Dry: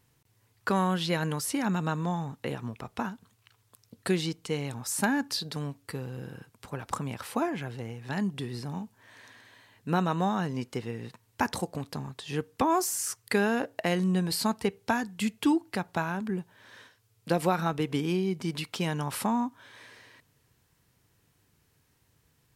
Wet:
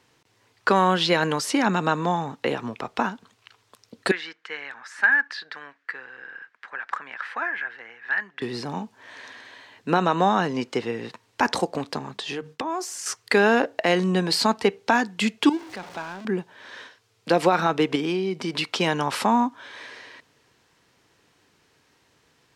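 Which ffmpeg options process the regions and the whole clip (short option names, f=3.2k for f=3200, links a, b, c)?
-filter_complex "[0:a]asettb=1/sr,asplit=3[a][b][c];[a]atrim=end=4.114[d];[b]atrim=start=4.11:end=8.42,asetpts=PTS-STARTPTS,afade=t=in:d=0.004:c=qsin,afade=t=out:st=4.306:d=0.004:c=qsin,acontrast=73,bandpass=f=1.7k:t=q:w=5.2[e];[c]atrim=start=8.416[f];[d][e]acrossfade=d=0.004:c1=hsin:c2=qsin[g];[g][f]acrossfade=d=0.004:c1=qsin:c2=hsin,asettb=1/sr,asplit=3[h][i][j];[h]atrim=end=11.984[k];[i]atrim=start=11.98:end=13.06,asetpts=PTS-STARTPTS,afade=t=in:d=0.004:c=qsin,afade=t=out:st=1.076:d=0.004:c=qsin,bandreject=f=50:t=h:w=6,bandreject=f=100:t=h:w=6,bandreject=f=150:t=h:w=6,bandreject=f=200:t=h:w=6,agate=range=-33dB:threshold=-51dB:ratio=3:release=100:detection=peak,acompressor=threshold=-34dB:ratio=16:attack=3.2:release=140:knee=1:detection=peak[l];[j]atrim=start=13.056[m];[k][l]acrossfade=d=0.004:c1=hsin:c2=qsin[n];[n][m]acrossfade=d=0.004:c1=qsin:c2=hsin,asettb=1/sr,asplit=3[o][p][q];[o]atrim=end=15.494[r];[p]atrim=start=15.49:end=16.25,asetpts=PTS-STARTPTS,afade=t=in:d=0.004:c=qsin,afade=t=out:st=0.756:d=0.004:c=qsin,aeval=exprs='val(0)+0.5*0.0376*sgn(val(0))':c=same,agate=range=-16dB:threshold=-20dB:ratio=16:release=100:detection=peak[s];[q]atrim=start=16.246[t];[r][s]acrossfade=d=0.004:c1=hsin:c2=qsin[u];[u][t]acrossfade=d=0.004:c1=qsin:c2=hsin,asettb=1/sr,asplit=3[v][w][x];[v]atrim=end=17.954[y];[w]atrim=start=17.95:end=18.59,asetpts=PTS-STARTPTS,afade=t=in:d=0.004:c=qsin,afade=t=out:st=0.636:d=0.004:c=qsin,bandreject=f=6.6k:w=20,acompressor=threshold=-30dB:ratio=2.5:attack=3.2:release=140:knee=1:detection=peak[z];[x]atrim=start=18.586[aa];[y][z]acrossfade=d=0.004:c1=hsin:c2=qsin[ab];[ab][aa]acrossfade=d=0.004:c1=qsin:c2=hsin,acrossover=split=240 7000:gain=0.178 1 0.126[ac][ad][ae];[ac][ad][ae]amix=inputs=3:normalize=0,alimiter=level_in=17.5dB:limit=-1dB:release=50:level=0:latency=1,volume=-7dB"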